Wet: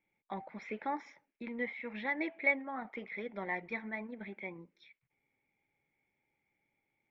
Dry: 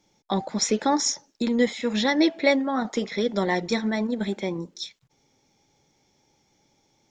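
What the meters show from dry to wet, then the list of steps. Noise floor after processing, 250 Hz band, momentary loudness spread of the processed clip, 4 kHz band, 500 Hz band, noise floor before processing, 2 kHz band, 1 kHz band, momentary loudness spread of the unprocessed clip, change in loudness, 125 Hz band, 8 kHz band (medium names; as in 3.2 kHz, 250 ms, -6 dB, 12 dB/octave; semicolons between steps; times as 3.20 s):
-84 dBFS, -18.5 dB, 14 LU, -27.5 dB, -16.5 dB, -68 dBFS, -6.0 dB, -12.5 dB, 9 LU, -13.5 dB, -19.0 dB, under -40 dB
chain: four-pole ladder low-pass 2.4 kHz, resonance 75%; dynamic bell 830 Hz, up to +6 dB, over -47 dBFS, Q 1.4; trim -7 dB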